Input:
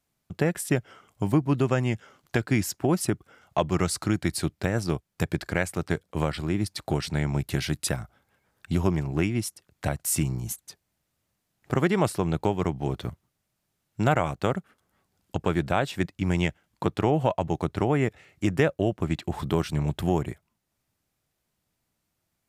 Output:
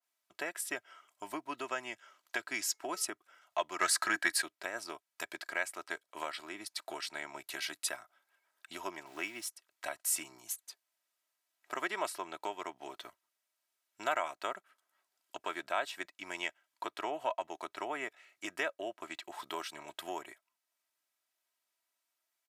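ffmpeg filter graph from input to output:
-filter_complex "[0:a]asettb=1/sr,asplit=3[s0][s1][s2];[s0]atrim=end=2.544[s3];[s1]atrim=start=2.54:end=3.06,asetpts=PTS-STARTPTS,afade=t=in:d=0.004:c=qsin,afade=t=out:st=0.516:d=0.004:c=qsin,equalizer=f=6000:w=0.87:g=6,bandreject=f=431.9:t=h:w=4,bandreject=f=863.8:t=h:w=4,bandreject=f=1295.7:t=h:w=4,bandreject=f=1727.6:t=h:w=4,bandreject=f=2159.5:t=h:w=4[s4];[s2]atrim=start=3.056[s5];[s3][s4]acrossfade=d=0.004:c1=hsin:c2=qsin[s6];[s6][s5]acrossfade=d=0.004:c1=qsin:c2=hsin,asettb=1/sr,asplit=3[s7][s8][s9];[s7]atrim=end=3.814[s10];[s8]atrim=start=3.81:end=4.42,asetpts=PTS-STARTPTS,afade=t=in:d=0.004:c=qsin,afade=t=out:st=0.606:d=0.004:c=qsin,equalizer=f=1700:w=5.1:g=13,bandreject=f=300:w=8.1,acontrast=74[s11];[s9]atrim=start=4.416[s12];[s10][s11]acrossfade=d=0.004:c1=hsin:c2=qsin[s13];[s13][s12]acrossfade=d=0.004:c1=qsin:c2=hsin,asettb=1/sr,asplit=3[s14][s15][s16];[s14]atrim=end=9.064[s17];[s15]atrim=start=9.06:end=9.47,asetpts=PTS-STARTPTS,afade=t=in:d=0.004:c=qsin,afade=t=out:st=0.406:d=0.004:c=qsin,highpass=f=44:w=0.5412,highpass=f=44:w=1.3066,aeval=exprs='val(0)*gte(abs(val(0)),0.0075)':c=same[s18];[s16]atrim=start=9.466[s19];[s17][s18]acrossfade=d=0.004:c1=hsin:c2=qsin[s20];[s20][s19]acrossfade=d=0.004:c1=qsin:c2=hsin,highpass=850,aecho=1:1:3.1:0.53,adynamicequalizer=threshold=0.00891:dfrequency=2200:dqfactor=0.7:tfrequency=2200:tqfactor=0.7:attack=5:release=100:ratio=0.375:range=1.5:mode=cutabove:tftype=highshelf,volume=0.531"

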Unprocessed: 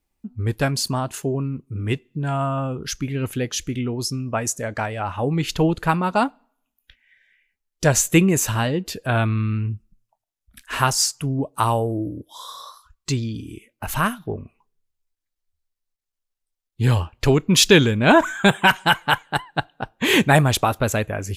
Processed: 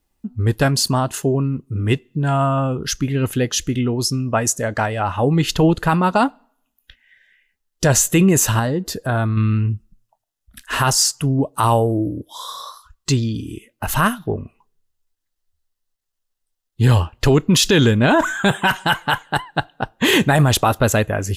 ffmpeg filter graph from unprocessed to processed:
-filter_complex "[0:a]asettb=1/sr,asplit=3[s0][s1][s2];[s0]atrim=end=8.594[s3];[s1]atrim=start=8.59:end=9.37,asetpts=PTS-STARTPTS,afade=t=in:d=0.004:c=qsin,afade=t=out:st=0.776:d=0.004:c=qsin,equalizer=f=2800:w=2:g=-10.5,acompressor=threshold=0.0631:ratio=2:attack=3.2:release=140:knee=1:detection=peak[s4];[s2]atrim=start=9.366[s5];[s3][s4]acrossfade=d=0.004:c1=hsin:c2=qsin[s6];[s6][s5]acrossfade=d=0.004:c1=qsin:c2=hsin,bandreject=f=2300:w=8.5,alimiter=limit=0.266:level=0:latency=1:release=15,volume=1.88"

